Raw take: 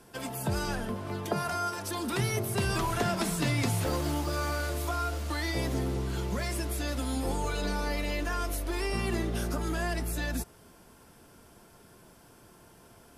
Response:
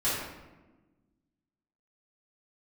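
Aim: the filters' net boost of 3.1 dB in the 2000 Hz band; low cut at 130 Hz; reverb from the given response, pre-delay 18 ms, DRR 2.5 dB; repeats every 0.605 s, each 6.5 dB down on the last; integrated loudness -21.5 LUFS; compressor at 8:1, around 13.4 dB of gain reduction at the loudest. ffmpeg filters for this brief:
-filter_complex "[0:a]highpass=130,equalizer=f=2k:t=o:g=4,acompressor=threshold=-39dB:ratio=8,aecho=1:1:605|1210|1815|2420|3025|3630:0.473|0.222|0.105|0.0491|0.0231|0.0109,asplit=2[a][b];[1:a]atrim=start_sample=2205,adelay=18[c];[b][c]afir=irnorm=-1:irlink=0,volume=-12.5dB[d];[a][d]amix=inputs=2:normalize=0,volume=17.5dB"

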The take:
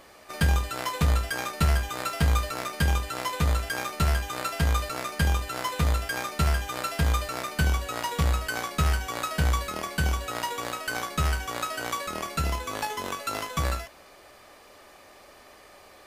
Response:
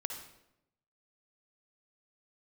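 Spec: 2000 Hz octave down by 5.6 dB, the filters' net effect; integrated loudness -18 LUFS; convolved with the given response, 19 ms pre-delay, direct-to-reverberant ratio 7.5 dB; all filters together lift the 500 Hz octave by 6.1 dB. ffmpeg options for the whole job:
-filter_complex "[0:a]equalizer=f=500:t=o:g=8,equalizer=f=2k:t=o:g=-8.5,asplit=2[a][b];[1:a]atrim=start_sample=2205,adelay=19[c];[b][c]afir=irnorm=-1:irlink=0,volume=-8dB[d];[a][d]amix=inputs=2:normalize=0,volume=9.5dB"

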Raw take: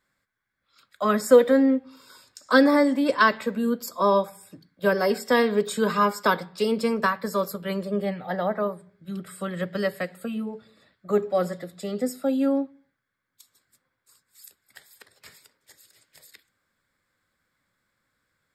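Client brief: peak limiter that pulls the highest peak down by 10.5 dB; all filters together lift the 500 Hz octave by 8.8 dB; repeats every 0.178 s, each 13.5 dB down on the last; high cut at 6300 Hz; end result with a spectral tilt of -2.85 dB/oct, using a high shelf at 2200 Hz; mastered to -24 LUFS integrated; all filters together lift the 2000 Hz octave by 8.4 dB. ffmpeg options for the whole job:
-af "lowpass=6.3k,equalizer=f=500:t=o:g=9,equalizer=f=2k:t=o:g=6.5,highshelf=f=2.2k:g=8.5,alimiter=limit=-6dB:level=0:latency=1,aecho=1:1:178|356:0.211|0.0444,volume=-5.5dB"

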